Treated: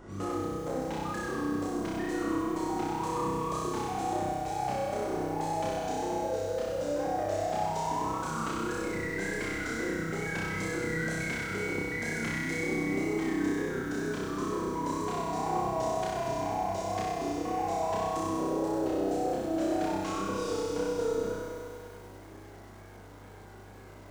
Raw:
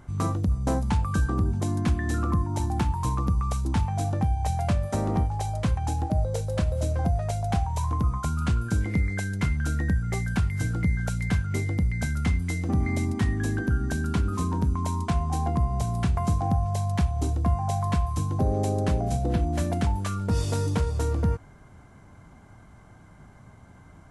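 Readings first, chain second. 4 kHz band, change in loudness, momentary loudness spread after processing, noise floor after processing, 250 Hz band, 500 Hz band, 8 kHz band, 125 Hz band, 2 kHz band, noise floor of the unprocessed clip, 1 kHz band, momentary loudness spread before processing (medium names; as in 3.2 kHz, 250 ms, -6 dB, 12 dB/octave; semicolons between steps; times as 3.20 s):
-1.5 dB, -5.5 dB, 8 LU, -49 dBFS, -3.0 dB, +3.0 dB, -3.0 dB, -16.5 dB, +1.0 dB, -51 dBFS, +0.5 dB, 2 LU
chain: Chebyshev band-pass 310–6800 Hz, order 2; peaking EQ 420 Hz +9 dB 0.92 oct; gain riding; peak limiter -20 dBFS, peak gain reduction 8 dB; compression 2:1, threshold -38 dBFS, peak gain reduction 7.5 dB; wow and flutter 120 cents; saturation -30.5 dBFS, distortion -18 dB; hum 50 Hz, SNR 15 dB; flutter echo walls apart 5.3 m, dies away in 1.2 s; bit-crushed delay 99 ms, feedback 80%, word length 9-bit, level -6.5 dB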